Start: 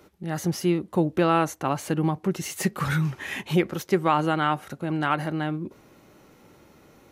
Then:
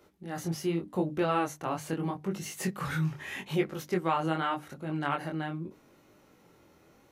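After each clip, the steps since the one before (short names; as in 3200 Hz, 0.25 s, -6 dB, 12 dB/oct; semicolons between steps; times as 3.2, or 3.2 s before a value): chorus 0.82 Hz, delay 19.5 ms, depth 5.7 ms; notches 50/100/150/200/250/300 Hz; gain -3.5 dB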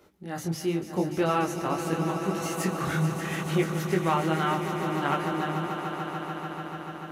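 swelling echo 0.146 s, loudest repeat 5, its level -11.5 dB; gain +2.5 dB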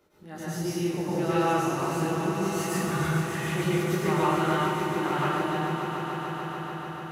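plate-style reverb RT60 1.1 s, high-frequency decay 0.95×, pre-delay 90 ms, DRR -8 dB; gain -7.5 dB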